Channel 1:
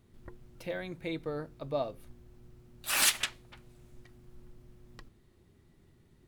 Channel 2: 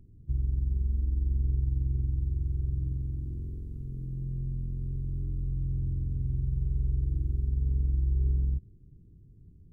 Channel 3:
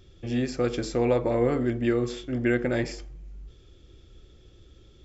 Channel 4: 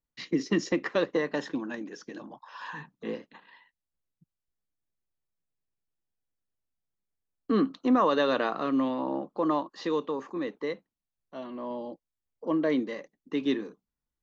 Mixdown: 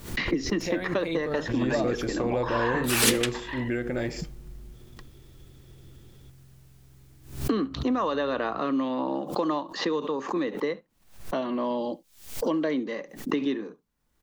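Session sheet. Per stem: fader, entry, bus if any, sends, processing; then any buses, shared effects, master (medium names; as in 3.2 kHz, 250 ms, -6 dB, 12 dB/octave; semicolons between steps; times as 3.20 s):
+3.0 dB, 0.00 s, no send, no echo send, none
-15.0 dB, 0.00 s, no send, no echo send, high-pass 160 Hz 12 dB/octave
-2.0 dB, 1.25 s, no send, no echo send, peak limiter -17 dBFS, peak gain reduction 5.5 dB
0.0 dB, 0.00 s, no send, echo send -22 dB, three bands compressed up and down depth 100%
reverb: none
echo: delay 70 ms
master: swell ahead of each attack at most 110 dB/s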